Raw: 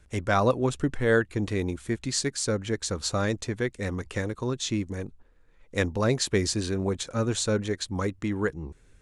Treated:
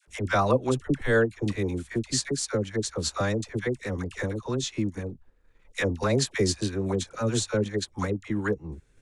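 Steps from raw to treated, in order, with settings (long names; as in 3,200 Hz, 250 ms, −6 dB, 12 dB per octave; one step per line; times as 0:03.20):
all-pass dispersion lows, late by 75 ms, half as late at 730 Hz
transient designer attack +1 dB, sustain −5 dB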